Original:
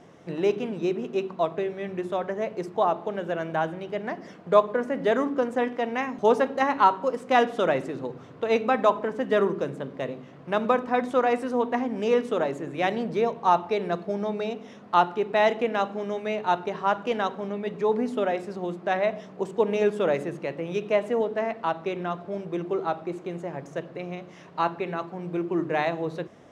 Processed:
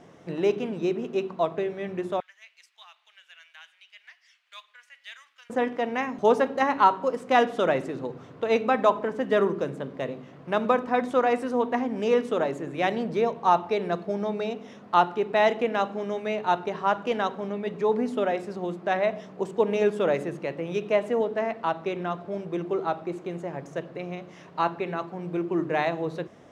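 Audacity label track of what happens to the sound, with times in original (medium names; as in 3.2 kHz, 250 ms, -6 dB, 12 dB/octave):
2.200000	5.500000	ladder high-pass 2 kHz, resonance 30%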